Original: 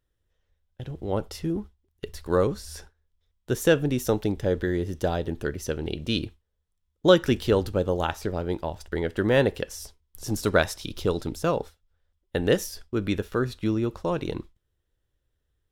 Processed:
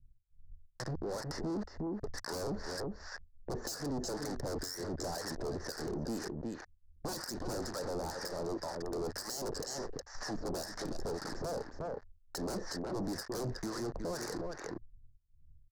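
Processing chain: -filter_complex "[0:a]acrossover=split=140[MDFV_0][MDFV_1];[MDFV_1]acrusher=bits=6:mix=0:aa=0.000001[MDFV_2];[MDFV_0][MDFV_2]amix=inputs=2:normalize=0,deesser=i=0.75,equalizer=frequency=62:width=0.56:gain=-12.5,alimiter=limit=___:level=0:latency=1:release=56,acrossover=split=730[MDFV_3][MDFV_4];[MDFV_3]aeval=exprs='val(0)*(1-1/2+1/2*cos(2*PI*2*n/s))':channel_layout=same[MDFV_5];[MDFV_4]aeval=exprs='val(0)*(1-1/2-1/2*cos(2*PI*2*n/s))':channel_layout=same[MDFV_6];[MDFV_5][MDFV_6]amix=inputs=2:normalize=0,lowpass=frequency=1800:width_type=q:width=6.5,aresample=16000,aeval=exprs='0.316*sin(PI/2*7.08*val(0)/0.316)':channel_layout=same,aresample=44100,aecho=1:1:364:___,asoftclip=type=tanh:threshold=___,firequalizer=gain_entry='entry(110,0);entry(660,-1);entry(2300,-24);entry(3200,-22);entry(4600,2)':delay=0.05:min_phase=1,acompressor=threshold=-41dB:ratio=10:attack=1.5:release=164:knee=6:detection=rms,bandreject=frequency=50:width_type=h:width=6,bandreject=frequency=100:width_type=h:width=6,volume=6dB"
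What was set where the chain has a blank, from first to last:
-10.5dB, 0.188, -22.5dB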